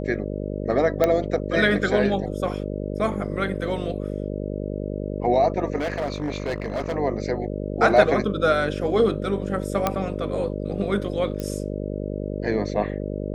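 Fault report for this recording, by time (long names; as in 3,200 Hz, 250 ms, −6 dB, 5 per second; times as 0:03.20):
mains buzz 50 Hz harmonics 12 −29 dBFS
0:01.04: click −7 dBFS
0:05.76–0:06.96: clipping −22 dBFS
0:09.87: click −7 dBFS
0:11.40: click −16 dBFS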